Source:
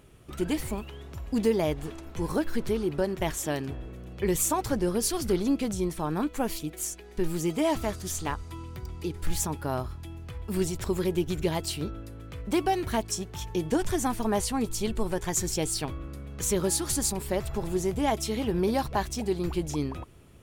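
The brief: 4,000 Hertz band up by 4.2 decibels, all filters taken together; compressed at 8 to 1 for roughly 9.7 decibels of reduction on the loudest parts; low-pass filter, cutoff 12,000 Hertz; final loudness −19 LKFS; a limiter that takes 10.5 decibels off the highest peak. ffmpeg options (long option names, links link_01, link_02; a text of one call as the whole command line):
ffmpeg -i in.wav -af "lowpass=12000,equalizer=frequency=4000:width_type=o:gain=5.5,acompressor=threshold=-29dB:ratio=8,volume=19dB,alimiter=limit=-9dB:level=0:latency=1" out.wav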